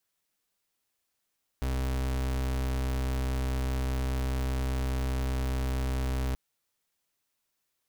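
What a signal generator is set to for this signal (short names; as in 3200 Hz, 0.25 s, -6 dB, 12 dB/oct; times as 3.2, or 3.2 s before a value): pulse 64.9 Hz, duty 37% -29.5 dBFS 4.73 s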